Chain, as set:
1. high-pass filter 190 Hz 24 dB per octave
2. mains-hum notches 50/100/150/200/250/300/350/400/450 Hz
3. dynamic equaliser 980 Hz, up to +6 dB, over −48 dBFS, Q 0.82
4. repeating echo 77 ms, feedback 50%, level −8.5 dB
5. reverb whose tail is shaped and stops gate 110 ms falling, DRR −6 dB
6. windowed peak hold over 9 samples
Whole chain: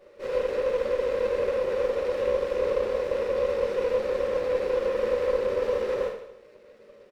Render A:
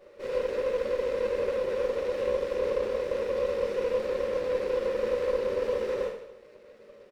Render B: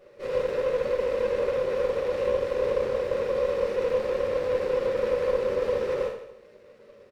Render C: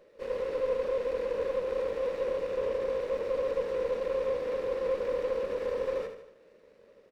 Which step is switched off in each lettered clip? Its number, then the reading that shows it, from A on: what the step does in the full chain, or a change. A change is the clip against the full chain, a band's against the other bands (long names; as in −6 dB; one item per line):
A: 3, change in integrated loudness −2.5 LU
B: 1, 125 Hz band +3.0 dB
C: 5, change in integrated loudness −5.0 LU